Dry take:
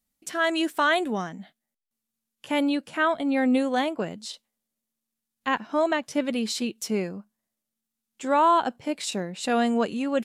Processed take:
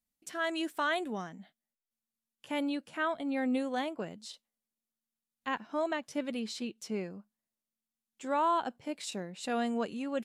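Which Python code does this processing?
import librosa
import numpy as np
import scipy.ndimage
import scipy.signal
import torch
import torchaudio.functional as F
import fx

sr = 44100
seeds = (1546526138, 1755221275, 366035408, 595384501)

y = fx.high_shelf(x, sr, hz=9700.0, db=-12.0, at=(6.4, 7.11))
y = F.gain(torch.from_numpy(y), -9.0).numpy()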